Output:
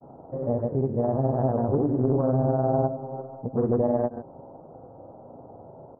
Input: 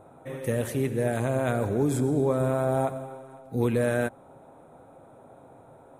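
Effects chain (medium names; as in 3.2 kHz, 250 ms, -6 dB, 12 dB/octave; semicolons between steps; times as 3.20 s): doubling 38 ms -10 dB; granulator, pitch spread up and down by 0 st; in parallel at +2 dB: compression, threshold -35 dBFS, peak gain reduction 14 dB; on the sum: inverse Chebyshev low-pass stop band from 2.4 kHz, stop band 50 dB; loudspeaker Doppler distortion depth 0.39 ms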